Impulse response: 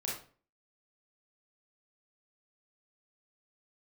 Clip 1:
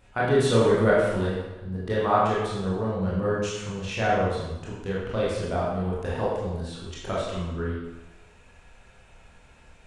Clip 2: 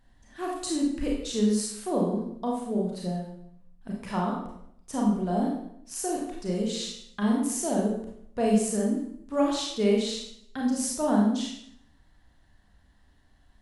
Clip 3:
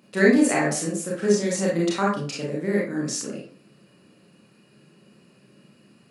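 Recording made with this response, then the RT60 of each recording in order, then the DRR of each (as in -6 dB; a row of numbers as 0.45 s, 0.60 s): 3; 1.0 s, 0.70 s, 0.40 s; -7.0 dB, -2.5 dB, -4.5 dB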